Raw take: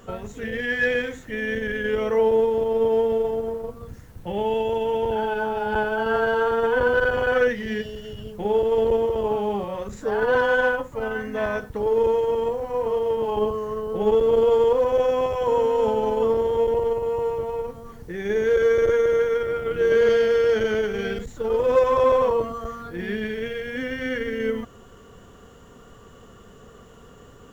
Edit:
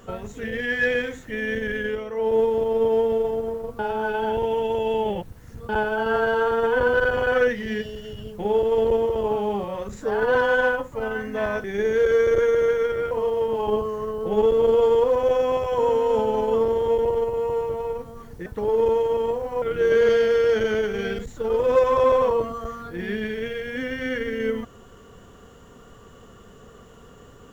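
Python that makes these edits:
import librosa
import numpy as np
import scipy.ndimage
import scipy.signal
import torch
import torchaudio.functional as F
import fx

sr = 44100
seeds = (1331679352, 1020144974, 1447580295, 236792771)

y = fx.edit(x, sr, fx.fade_down_up(start_s=1.8, length_s=0.59, db=-9.0, fade_s=0.24),
    fx.reverse_span(start_s=3.79, length_s=1.9),
    fx.swap(start_s=11.64, length_s=1.16, other_s=18.15, other_length_s=1.47), tone=tone)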